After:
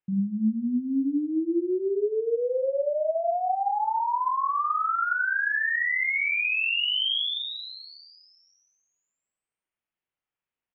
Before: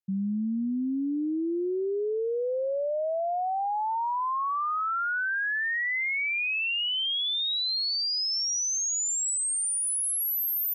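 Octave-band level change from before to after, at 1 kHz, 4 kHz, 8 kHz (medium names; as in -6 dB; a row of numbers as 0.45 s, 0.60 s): +2.5 dB, -1.5 dB, under -40 dB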